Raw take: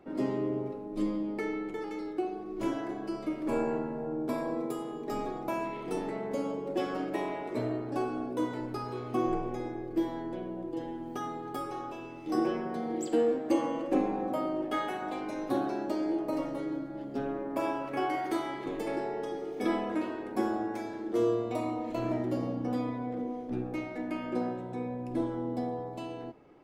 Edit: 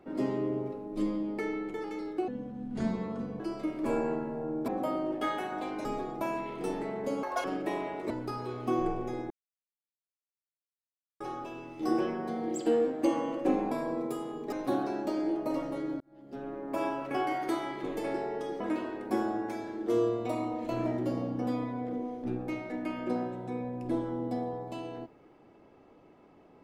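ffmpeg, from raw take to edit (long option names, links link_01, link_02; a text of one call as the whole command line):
ffmpeg -i in.wav -filter_complex "[0:a]asplit=14[link_01][link_02][link_03][link_04][link_05][link_06][link_07][link_08][link_09][link_10][link_11][link_12][link_13][link_14];[link_01]atrim=end=2.284[link_15];[link_02]atrim=start=2.28:end=3.03,asetpts=PTS-STARTPTS,asetrate=29547,aresample=44100[link_16];[link_03]atrim=start=3.026:end=4.312[link_17];[link_04]atrim=start=14.178:end=15.352[link_18];[link_05]atrim=start=5.118:end=6.504[link_19];[link_06]atrim=start=6.5:end=6.92,asetpts=PTS-STARTPTS,asetrate=86436,aresample=44100[link_20];[link_07]atrim=start=6.916:end=7.582[link_21];[link_08]atrim=start=8.568:end=9.77,asetpts=PTS-STARTPTS,afade=type=out:start_time=1.198:duration=0.004:curve=hsin[link_22];[link_09]atrim=start=9.77:end=11.67,asetpts=PTS-STARTPTS,volume=0[link_23];[link_10]atrim=start=11.67:end=14.182,asetpts=PTS-STARTPTS,afade=type=in:duration=0.004:curve=hsin[link_24];[link_11]atrim=start=4.308:end=5.122[link_25];[link_12]atrim=start=15.348:end=16.83,asetpts=PTS-STARTPTS,afade=type=out:start_time=1.478:duration=0.004:curve=hsin[link_26];[link_13]atrim=start=16.83:end=19.432,asetpts=PTS-STARTPTS,afade=type=in:duration=0.86[link_27];[link_14]atrim=start=19.858[link_28];[link_15][link_16]acrossfade=duration=0.004:curve1=hsin:curve2=hsin[link_29];[link_29][link_17]acrossfade=duration=0.004:curve1=hsin:curve2=hsin[link_30];[link_30][link_18]acrossfade=duration=0.004:curve1=hsin:curve2=hsin[link_31];[link_31][link_19]acrossfade=duration=0.004:curve1=hsin:curve2=hsin[link_32];[link_32][link_20]acrossfade=duration=0.004:curve1=hsin:curve2=hsin[link_33];[link_33][link_21]acrossfade=duration=0.004:curve1=hsin:curve2=hsin[link_34];[link_22][link_23][link_24]concat=n=3:v=0:a=1[link_35];[link_34][link_35]acrossfade=duration=0.004:curve1=hsin:curve2=hsin[link_36];[link_36][link_25]acrossfade=duration=0.004:curve1=hsin:curve2=hsin[link_37];[link_26][link_27]concat=n=2:v=0:a=1[link_38];[link_37][link_38]acrossfade=duration=0.004:curve1=hsin:curve2=hsin[link_39];[link_39][link_28]acrossfade=duration=0.004:curve1=hsin:curve2=hsin" out.wav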